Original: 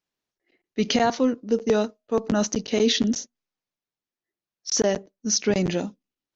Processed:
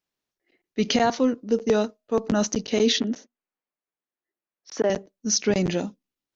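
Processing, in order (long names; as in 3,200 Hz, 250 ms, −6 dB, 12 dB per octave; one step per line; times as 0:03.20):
0:03.00–0:04.90: three-way crossover with the lows and the highs turned down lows −15 dB, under 210 Hz, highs −19 dB, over 2,800 Hz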